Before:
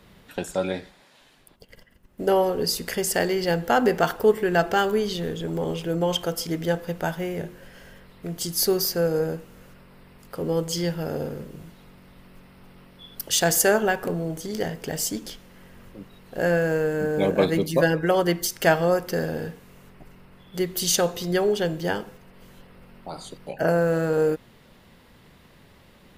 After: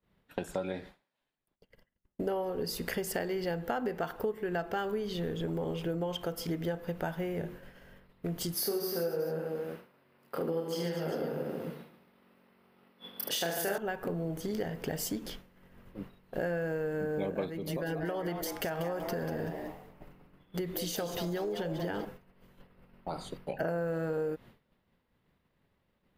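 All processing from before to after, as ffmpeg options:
ffmpeg -i in.wav -filter_complex "[0:a]asettb=1/sr,asplit=3[link_01][link_02][link_03];[link_01]atrim=end=8.544[link_04];[link_02]atrim=start=8.54:end=13.78,asetpts=PTS-STARTPTS,afade=type=in:duration=0.004:curve=qsin,afade=type=out:start_time=5.236:duration=0.004:curve=qsin,highpass=210,equalizer=frequency=7100:width_type=o:width=0.24:gain=-7,aecho=1:1:30|75|142.5|243.8|395.6:0.794|0.631|0.501|0.398|0.316,atrim=end_sample=231084[link_05];[link_03]atrim=start=13.776[link_06];[link_04][link_05]acrossfade=duration=0.004:curve1=hsin:curve2=qsin[link_07];[link_07][link_06]acrossfade=duration=0.004:curve1=qsin:curve2=hsin,asettb=1/sr,asplit=3[link_08][link_09][link_10];[link_08]atrim=end=17.484[link_11];[link_09]atrim=start=17.48:end=22.05,asetpts=PTS-STARTPTS,afade=type=in:duration=0.004:curve=qsin,afade=type=out:start_time=4.566:duration=0.004:curve=qsin,acompressor=threshold=-26dB:ratio=5:attack=3.2:release=140:knee=1:detection=peak,asplit=5[link_12][link_13][link_14][link_15][link_16];[link_13]adelay=190,afreqshift=140,volume=-8.5dB[link_17];[link_14]adelay=380,afreqshift=280,volume=-17.4dB[link_18];[link_15]adelay=570,afreqshift=420,volume=-26.2dB[link_19];[link_16]adelay=760,afreqshift=560,volume=-35.1dB[link_20];[link_12][link_17][link_18][link_19][link_20]amix=inputs=5:normalize=0,atrim=end_sample=201537[link_21];[link_10]atrim=start=22.046[link_22];[link_11][link_21]acrossfade=duration=0.004:curve1=hsin:curve2=qsin[link_23];[link_23][link_22]acrossfade=duration=0.004:curve1=qsin:curve2=hsin,agate=range=-33dB:threshold=-39dB:ratio=3:detection=peak,equalizer=frequency=7200:width_type=o:width=1.8:gain=-9,acompressor=threshold=-31dB:ratio=6" out.wav

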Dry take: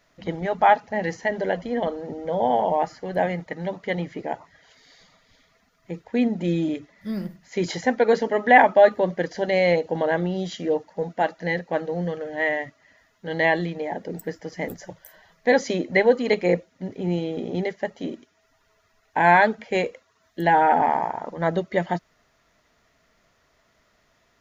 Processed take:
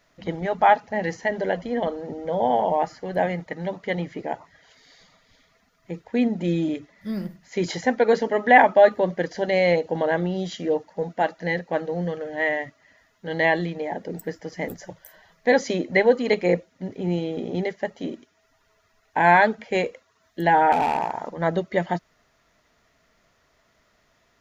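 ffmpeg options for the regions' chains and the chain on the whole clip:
ffmpeg -i in.wav -filter_complex "[0:a]asettb=1/sr,asplit=3[link_01][link_02][link_03];[link_01]atrim=end=20.724[link_04];[link_02]atrim=start=20.72:end=21.29,asetpts=PTS-STARTPTS,afade=type=in:duration=0.004:curve=qsin,afade=type=out:start_time=0.566:duration=0.004:curve=qsin,highshelf=frequency=4400:gain=9,volume=17dB,asoftclip=hard,volume=-17dB[link_05];[link_03]atrim=start=21.286[link_06];[link_04][link_05]acrossfade=duration=0.004:curve1=hsin:curve2=qsin[link_07];[link_07][link_06]acrossfade=duration=0.004:curve1=qsin:curve2=hsin" out.wav

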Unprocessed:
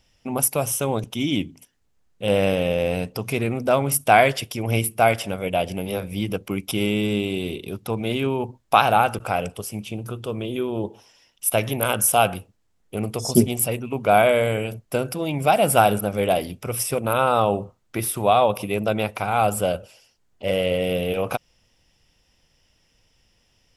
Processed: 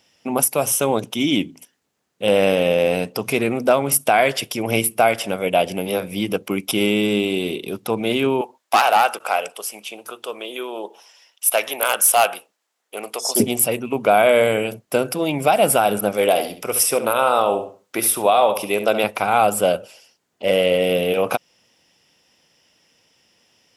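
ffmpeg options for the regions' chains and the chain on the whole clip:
ffmpeg -i in.wav -filter_complex "[0:a]asettb=1/sr,asplit=3[link_01][link_02][link_03];[link_01]atrim=end=8.414[link_04];[link_02]atrim=start=8.41:end=13.4,asetpts=PTS-STARTPTS,afade=type=in:duration=0.004:curve=qsin,afade=type=out:start_time=4.986:duration=0.004:curve=qsin,highpass=630,asoftclip=type=hard:threshold=-14.5dB[link_05];[link_03]atrim=start=13.396[link_06];[link_04][link_05]acrossfade=duration=0.004:curve1=hsin:curve2=qsin[link_07];[link_07][link_06]acrossfade=duration=0.004:curve1=qsin:curve2=hsin,asettb=1/sr,asplit=3[link_08][link_09][link_10];[link_08]atrim=end=16.124[link_11];[link_09]atrim=start=16.12:end=19.04,asetpts=PTS-STARTPTS,afade=type=in:duration=0.004:curve=qsin,afade=type=out:start_time=2.916:duration=0.004:curve=qsin,bass=frequency=250:gain=-8,treble=frequency=4000:gain=3,asplit=2[link_12][link_13];[link_13]adelay=70,lowpass=frequency=4200:poles=1,volume=-9.5dB,asplit=2[link_14][link_15];[link_15]adelay=70,lowpass=frequency=4200:poles=1,volume=0.26,asplit=2[link_16][link_17];[link_17]adelay=70,lowpass=frequency=4200:poles=1,volume=0.26[link_18];[link_12][link_14][link_16][link_18]amix=inputs=4:normalize=0,atrim=end_sample=128772[link_19];[link_10]atrim=start=19.036[link_20];[link_11][link_19]acrossfade=duration=0.004:curve1=hsin:curve2=qsin[link_21];[link_21][link_20]acrossfade=duration=0.004:curve1=qsin:curve2=hsin,highpass=210,alimiter=limit=-10dB:level=0:latency=1:release=240,volume=5.5dB" out.wav

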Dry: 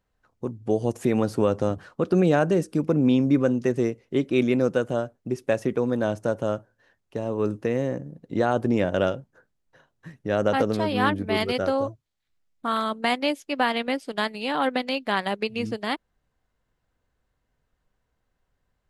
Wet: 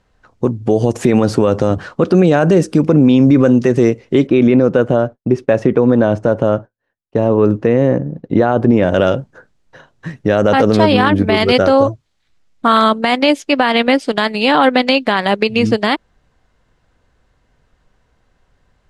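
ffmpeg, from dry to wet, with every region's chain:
ffmpeg -i in.wav -filter_complex "[0:a]asettb=1/sr,asplit=3[link_01][link_02][link_03];[link_01]atrim=end=4.274[link_04];[link_02]atrim=start=4.27:end=8.83,asetpts=PTS-STARTPTS,afade=type=in:duration=0.004:curve=qsin,afade=type=out:start_time=4.556:duration=0.004:curve=qsin,lowpass=frequency=1800:poles=1,agate=range=-33dB:threshold=-50dB:ratio=3:release=100:detection=peak[link_05];[link_03]atrim=start=8.826[link_06];[link_04][link_05]acrossfade=duration=0.004:curve1=hsin:curve2=qsin[link_07];[link_07][link_06]acrossfade=duration=0.004:curve1=qsin:curve2=hsin,lowpass=7500,alimiter=level_in=17dB:limit=-1dB:release=50:level=0:latency=1,volume=-1dB" out.wav

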